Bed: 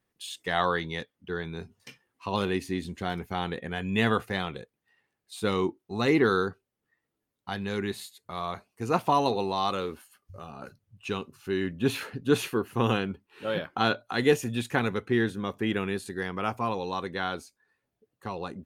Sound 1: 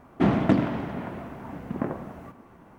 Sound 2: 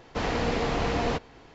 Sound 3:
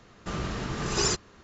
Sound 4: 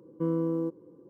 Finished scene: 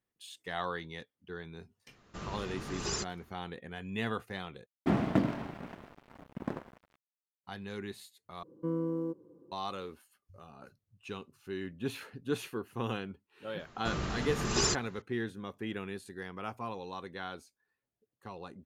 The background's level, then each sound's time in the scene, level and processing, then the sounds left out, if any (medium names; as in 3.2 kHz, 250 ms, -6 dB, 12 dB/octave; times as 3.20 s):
bed -10 dB
1.88 s: add 3 -9.5 dB
4.66 s: replace with 1 -6 dB + crossover distortion -36 dBFS
8.43 s: replace with 4 -5 dB
13.59 s: add 3 -3 dB
not used: 2